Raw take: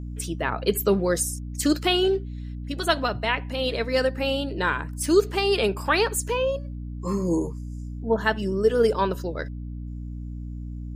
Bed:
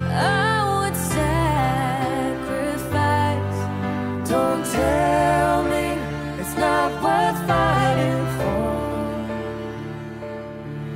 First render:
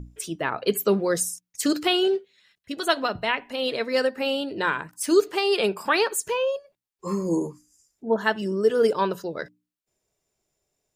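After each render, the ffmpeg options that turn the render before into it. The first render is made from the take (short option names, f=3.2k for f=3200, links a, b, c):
-af "bandreject=f=60:t=h:w=6,bandreject=f=120:t=h:w=6,bandreject=f=180:t=h:w=6,bandreject=f=240:t=h:w=6,bandreject=f=300:t=h:w=6"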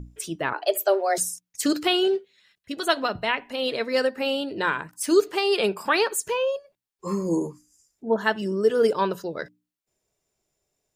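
-filter_complex "[0:a]asettb=1/sr,asplit=3[a][b][c];[a]atrim=end=0.534[d];[b]atrim=start=0.53:end=1.18,asetpts=PTS-STARTPTS,afade=t=in:d=0.004:c=qsin,afade=t=out:st=0.646:d=0.004:c=qsin,afreqshift=190[e];[c]atrim=start=1.176[f];[d][e]acrossfade=d=0.004:c1=hsin:c2=qsin[g];[g][f]acrossfade=d=0.004:c1=qsin:c2=hsin"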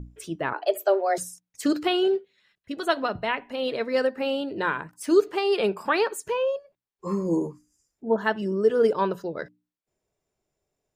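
-af "highshelf=f=2.9k:g=-10"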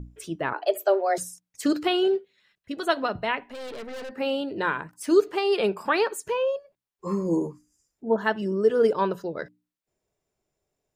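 -filter_complex "[0:a]asettb=1/sr,asplit=3[a][b][c];[a]atrim=end=3.434[d];[b]atrim=start=3.43:end=4.12,asetpts=PTS-STARTPTS,afade=t=in:d=0.004:c=qsin,afade=t=out:st=0.686:d=0.004:c=qsin,aeval=exprs='(tanh(56.2*val(0)+0.45)-tanh(0.45))/56.2':c=same[e];[c]atrim=start=4.116[f];[d][e]acrossfade=d=0.004:c1=hsin:c2=qsin[g];[g][f]acrossfade=d=0.004:c1=qsin:c2=hsin"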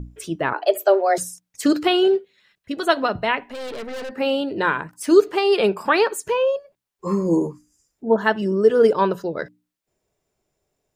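-af "volume=5.5dB"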